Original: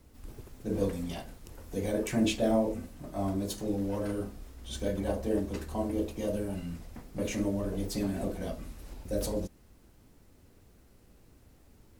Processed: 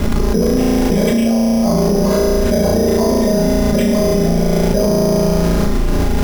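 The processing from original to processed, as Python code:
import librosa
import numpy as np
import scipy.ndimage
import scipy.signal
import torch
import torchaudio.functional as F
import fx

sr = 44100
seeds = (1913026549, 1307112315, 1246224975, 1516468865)

y = x + 0.86 * np.pad(x, (int(4.9 * sr / 1000.0), 0))[:len(x)]
y = fx.stretch_grains(y, sr, factor=0.52, grain_ms=41.0)
y = fx.room_flutter(y, sr, wall_m=6.0, rt60_s=1.3)
y = np.repeat(scipy.signal.resample_poly(y, 1, 8), 8)[:len(y)]
y = fx.env_flatten(y, sr, amount_pct=100)
y = F.gain(torch.from_numpy(y), 2.0).numpy()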